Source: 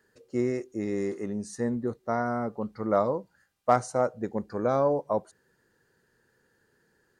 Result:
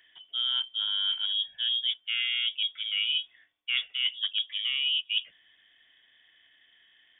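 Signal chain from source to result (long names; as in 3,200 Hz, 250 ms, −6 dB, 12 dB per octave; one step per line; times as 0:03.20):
reversed playback
downward compressor 16 to 1, threshold −32 dBFS, peak gain reduction 17.5 dB
reversed playback
voice inversion scrambler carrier 3,500 Hz
level +7 dB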